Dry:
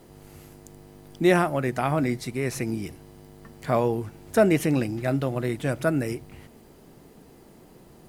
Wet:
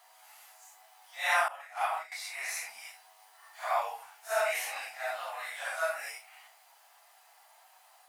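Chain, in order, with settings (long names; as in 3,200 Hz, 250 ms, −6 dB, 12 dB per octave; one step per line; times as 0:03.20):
random phases in long frames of 200 ms
elliptic high-pass filter 730 Hz, stop band 50 dB
0:01.48–0:02.12: downward expander −26 dBFS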